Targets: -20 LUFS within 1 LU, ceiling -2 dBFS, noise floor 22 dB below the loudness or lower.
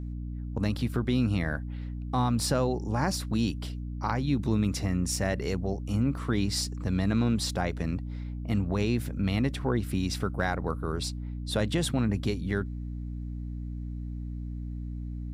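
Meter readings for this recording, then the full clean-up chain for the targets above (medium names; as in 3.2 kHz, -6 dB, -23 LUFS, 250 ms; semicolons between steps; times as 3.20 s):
hum 60 Hz; highest harmonic 300 Hz; hum level -33 dBFS; loudness -30.0 LUFS; peak level -13.5 dBFS; loudness target -20.0 LUFS
-> de-hum 60 Hz, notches 5; trim +10 dB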